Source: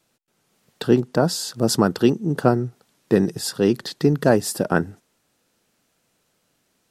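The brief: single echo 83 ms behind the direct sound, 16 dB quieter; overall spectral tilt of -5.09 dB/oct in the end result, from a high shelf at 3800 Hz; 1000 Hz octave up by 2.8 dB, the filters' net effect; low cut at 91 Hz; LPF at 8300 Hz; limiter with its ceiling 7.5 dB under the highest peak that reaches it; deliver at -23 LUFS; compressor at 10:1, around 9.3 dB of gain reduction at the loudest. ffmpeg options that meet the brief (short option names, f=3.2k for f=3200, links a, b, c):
-af "highpass=91,lowpass=8.3k,equalizer=f=1k:t=o:g=4.5,highshelf=f=3.8k:g=-3.5,acompressor=threshold=-19dB:ratio=10,alimiter=limit=-15.5dB:level=0:latency=1,aecho=1:1:83:0.158,volume=6dB"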